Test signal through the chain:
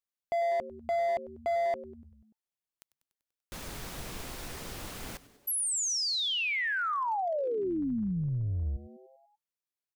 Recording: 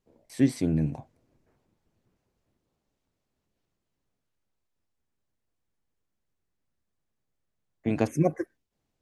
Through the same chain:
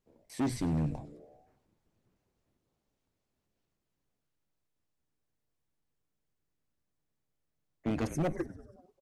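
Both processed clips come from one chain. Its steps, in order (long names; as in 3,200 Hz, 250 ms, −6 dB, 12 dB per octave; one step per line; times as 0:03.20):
on a send: echo with shifted repeats 97 ms, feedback 63%, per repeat −150 Hz, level −18 dB
on the sum: hard clipping −24 dBFS
level −2.5 dB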